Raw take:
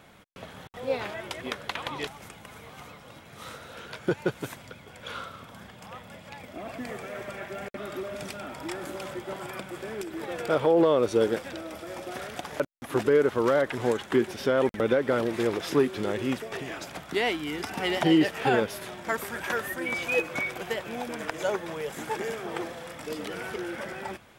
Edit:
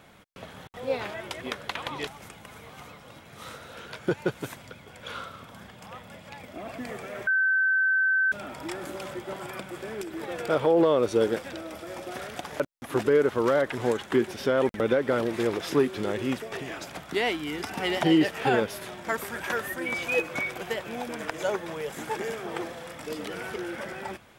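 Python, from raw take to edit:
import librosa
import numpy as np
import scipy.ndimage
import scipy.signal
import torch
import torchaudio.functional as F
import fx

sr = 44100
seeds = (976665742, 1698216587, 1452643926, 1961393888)

y = fx.edit(x, sr, fx.bleep(start_s=7.27, length_s=1.05, hz=1540.0, db=-20.0), tone=tone)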